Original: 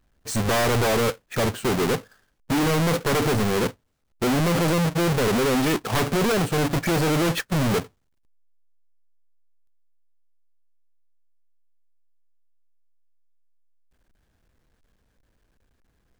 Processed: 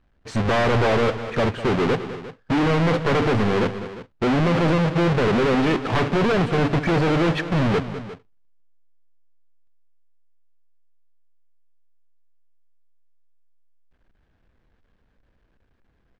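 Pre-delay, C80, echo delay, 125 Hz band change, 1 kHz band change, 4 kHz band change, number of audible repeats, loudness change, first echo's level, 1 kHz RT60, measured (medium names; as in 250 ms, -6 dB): no reverb, no reverb, 201 ms, +2.5 dB, +2.5 dB, -2.0 dB, 2, +2.0 dB, -12.5 dB, no reverb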